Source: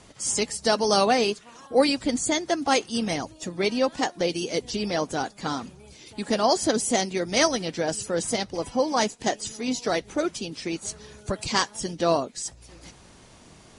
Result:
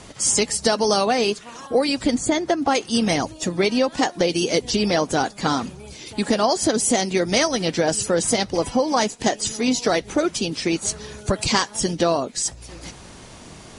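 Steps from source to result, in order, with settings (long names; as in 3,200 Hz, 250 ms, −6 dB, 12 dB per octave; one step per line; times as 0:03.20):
0:02.15–0:02.75: high-shelf EQ 2,900 Hz −9.5 dB
downward compressor 12 to 1, threshold −24 dBFS, peak gain reduction 11.5 dB
level +9 dB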